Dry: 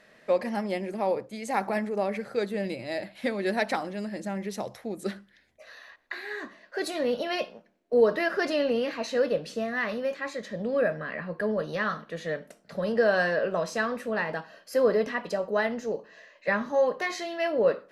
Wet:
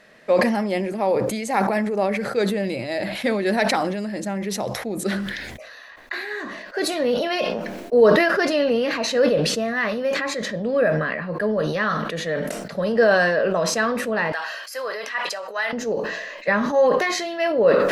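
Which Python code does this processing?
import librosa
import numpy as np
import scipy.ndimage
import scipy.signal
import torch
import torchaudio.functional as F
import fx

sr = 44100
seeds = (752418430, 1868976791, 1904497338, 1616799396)

y = fx.highpass(x, sr, hz=1100.0, slope=12, at=(14.32, 15.73))
y = fx.sustainer(y, sr, db_per_s=34.0)
y = y * 10.0 ** (5.5 / 20.0)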